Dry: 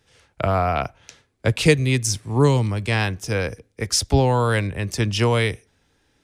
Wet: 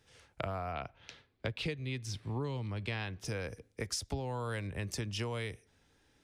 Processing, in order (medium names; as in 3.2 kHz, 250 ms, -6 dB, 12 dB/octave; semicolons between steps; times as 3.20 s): 0.72–3.25 s: resonant high shelf 5.3 kHz -10 dB, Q 1.5; compression 6:1, threshold -30 dBFS, peak gain reduction 19.5 dB; trim -5 dB